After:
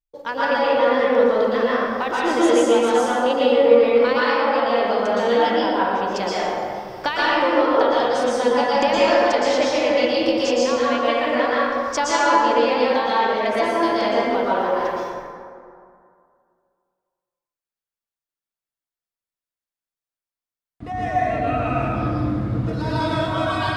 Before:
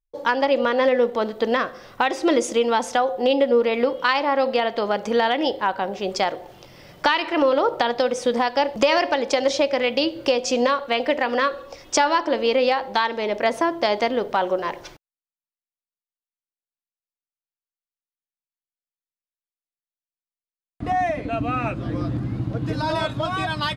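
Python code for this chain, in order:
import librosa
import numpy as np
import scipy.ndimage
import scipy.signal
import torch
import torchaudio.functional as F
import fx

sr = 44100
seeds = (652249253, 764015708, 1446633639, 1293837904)

p1 = fx.level_steps(x, sr, step_db=17)
p2 = x + F.gain(torch.from_numpy(p1), -2.0).numpy()
p3 = fx.rev_plate(p2, sr, seeds[0], rt60_s=2.3, hf_ratio=0.45, predelay_ms=105, drr_db=-8.0)
y = F.gain(torch.from_numpy(p3), -8.5).numpy()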